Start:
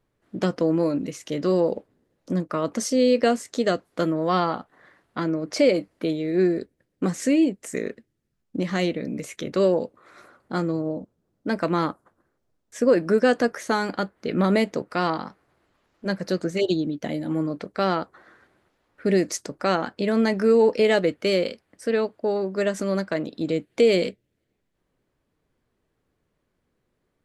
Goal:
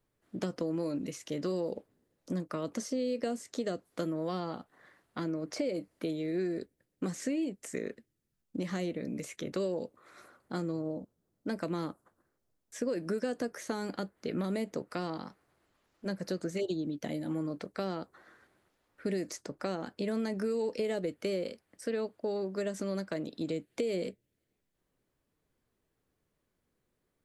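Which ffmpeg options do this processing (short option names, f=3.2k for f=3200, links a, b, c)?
-filter_complex "[0:a]acrossover=split=620|2000|6100[a][b][c][d];[a]acompressor=threshold=-20dB:ratio=4[e];[b]acompressor=threshold=-36dB:ratio=4[f];[c]acompressor=threshold=-43dB:ratio=4[g];[d]acompressor=threshold=-51dB:ratio=4[h];[e][f][g][h]amix=inputs=4:normalize=0,highshelf=f=6.2k:g=9,acompressor=threshold=-25dB:ratio=2,volume=-6.5dB"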